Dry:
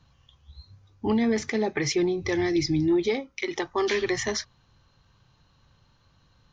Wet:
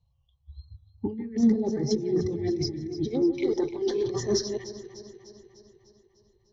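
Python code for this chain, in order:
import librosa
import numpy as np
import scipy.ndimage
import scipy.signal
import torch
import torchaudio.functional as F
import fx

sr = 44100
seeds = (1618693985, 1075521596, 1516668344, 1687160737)

p1 = fx.reverse_delay(x, sr, ms=221, wet_db=-7)
p2 = fx.dynamic_eq(p1, sr, hz=110.0, q=2.2, threshold_db=-48.0, ratio=4.0, max_db=6)
p3 = fx.over_compress(p2, sr, threshold_db=-27.0, ratio=-0.5)
p4 = fx.tube_stage(p3, sr, drive_db=14.0, bias=0.35)
p5 = np.clip(p4, -10.0 ** (-22.5 / 20.0), 10.0 ** (-22.5 / 20.0))
p6 = fx.env_phaser(p5, sr, low_hz=250.0, high_hz=2500.0, full_db=-25.5)
p7 = fx.tremolo_shape(p6, sr, shape='saw_down', hz=2.1, depth_pct=45)
p8 = p7 + fx.echo_alternate(p7, sr, ms=150, hz=1500.0, feedback_pct=83, wet_db=-8.0, dry=0)
p9 = fx.spectral_expand(p8, sr, expansion=1.5)
y = p9 * 10.0 ** (6.5 / 20.0)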